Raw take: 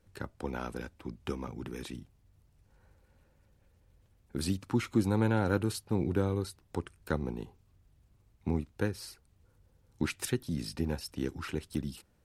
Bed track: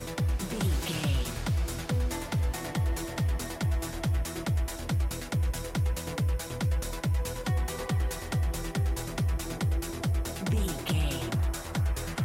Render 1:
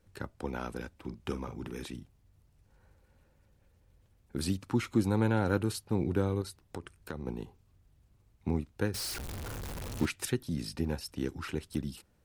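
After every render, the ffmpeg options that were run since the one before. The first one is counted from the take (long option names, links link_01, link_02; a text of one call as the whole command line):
ffmpeg -i in.wav -filter_complex "[0:a]asettb=1/sr,asplit=3[link_01][link_02][link_03];[link_01]atrim=end=0.934[link_04];[link_02]atrim=start=0.93:end=1.85,asetpts=PTS-STARTPTS,afade=type=in:duration=0.004:curve=qsin,afade=type=out:start_time=0.916:duration=0.004:curve=qsin,asplit=2[link_05][link_06];[link_06]adelay=45,volume=-11dB[link_07];[link_05][link_07]amix=inputs=2:normalize=0,atrim=end_sample=40572[link_08];[link_03]atrim=start=1.846[link_09];[link_04][link_08]acrossfade=duration=0.004:curve1=hsin:curve2=qsin[link_10];[link_10][link_09]acrossfade=duration=0.004:curve1=qsin:curve2=hsin,asettb=1/sr,asplit=3[link_11][link_12][link_13];[link_11]atrim=end=6.414[link_14];[link_12]atrim=start=6.41:end=7.27,asetpts=PTS-STARTPTS,afade=type=in:duration=0.004:curve=qsin,afade=type=out:start_time=0.856:duration=0.004:curve=qsin,acompressor=threshold=-34dB:ratio=6:attack=3.2:release=140:knee=1:detection=peak[link_15];[link_13]atrim=start=7.266[link_16];[link_14][link_15]acrossfade=duration=0.004:curve1=hsin:curve2=qsin[link_17];[link_17][link_16]acrossfade=duration=0.004:curve1=qsin:curve2=hsin,asettb=1/sr,asplit=3[link_18][link_19][link_20];[link_18]atrim=end=8.944[link_21];[link_19]atrim=start=8.94:end=10.06,asetpts=PTS-STARTPTS,afade=type=in:duration=0.004:curve=qsin,afade=type=out:start_time=1.116:duration=0.004:curve=qsin,aeval=exprs='val(0)+0.5*0.0211*sgn(val(0))':channel_layout=same[link_22];[link_20]atrim=start=10.056[link_23];[link_21][link_22]acrossfade=duration=0.004:curve1=hsin:curve2=qsin[link_24];[link_24][link_23]acrossfade=duration=0.004:curve1=qsin:curve2=hsin" out.wav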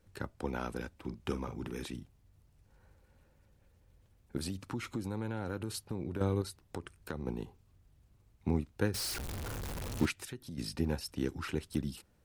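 ffmpeg -i in.wav -filter_complex "[0:a]asettb=1/sr,asplit=3[link_01][link_02][link_03];[link_01]atrim=end=4.374[link_04];[link_02]atrim=start=4.37:end=6.21,asetpts=PTS-STARTPTS,afade=type=in:duration=0.004:curve=qsin,afade=type=out:start_time=1.836:duration=0.004:curve=qsin,acompressor=threshold=-34dB:ratio=4:attack=3.2:release=140:knee=1:detection=peak[link_05];[link_03]atrim=start=6.206[link_06];[link_04][link_05]acrossfade=duration=0.004:curve1=hsin:curve2=qsin[link_07];[link_07][link_06]acrossfade=duration=0.004:curve1=qsin:curve2=hsin,asplit=3[link_08][link_09][link_10];[link_08]afade=type=out:start_time=10.12:duration=0.02[link_11];[link_09]acompressor=threshold=-45dB:ratio=2.5:attack=3.2:release=140:knee=1:detection=peak,afade=type=in:start_time=10.12:duration=0.02,afade=type=out:start_time=10.57:duration=0.02[link_12];[link_10]afade=type=in:start_time=10.57:duration=0.02[link_13];[link_11][link_12][link_13]amix=inputs=3:normalize=0" out.wav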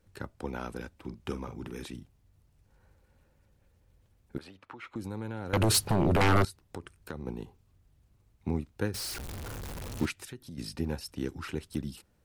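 ffmpeg -i in.wav -filter_complex "[0:a]asettb=1/sr,asplit=3[link_01][link_02][link_03];[link_01]atrim=end=4.384[link_04];[link_02]atrim=start=4.38:end=4.96,asetpts=PTS-STARTPTS,afade=type=in:duration=0.004:curve=qsin,afade=type=out:start_time=0.576:duration=0.004:curve=qsin,acrossover=split=450 3200:gain=0.126 1 0.0891[link_05][link_06][link_07];[link_05][link_06][link_07]amix=inputs=3:normalize=0[link_08];[link_03]atrim=start=4.956[link_09];[link_04][link_08]acrossfade=duration=0.004:curve1=hsin:curve2=qsin[link_10];[link_10][link_09]acrossfade=duration=0.004:curve1=qsin:curve2=hsin,asettb=1/sr,asplit=3[link_11][link_12][link_13];[link_11]atrim=end=5.534[link_14];[link_12]atrim=start=5.53:end=6.45,asetpts=PTS-STARTPTS,afade=type=in:duration=0.004:curve=qsin,afade=type=out:start_time=0.916:duration=0.004:curve=qsin,aeval=exprs='0.112*sin(PI/2*5.62*val(0)/0.112)':channel_layout=same[link_15];[link_13]atrim=start=6.446[link_16];[link_14][link_15]acrossfade=duration=0.004:curve1=hsin:curve2=qsin[link_17];[link_17][link_16]acrossfade=duration=0.004:curve1=qsin:curve2=hsin" out.wav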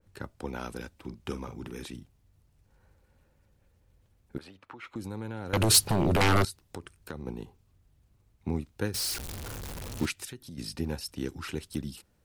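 ffmpeg -i in.wav -af "adynamicequalizer=threshold=0.00447:dfrequency=2600:dqfactor=0.7:tfrequency=2600:tqfactor=0.7:attack=5:release=100:ratio=0.375:range=3:mode=boostabove:tftype=highshelf" out.wav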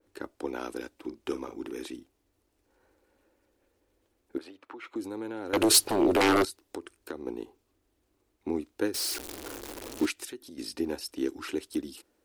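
ffmpeg -i in.wav -af "lowshelf=frequency=220:width_type=q:width=3:gain=-12" out.wav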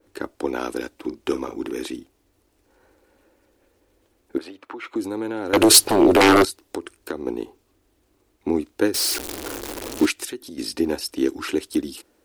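ffmpeg -i in.wav -af "volume=9dB,alimiter=limit=-3dB:level=0:latency=1" out.wav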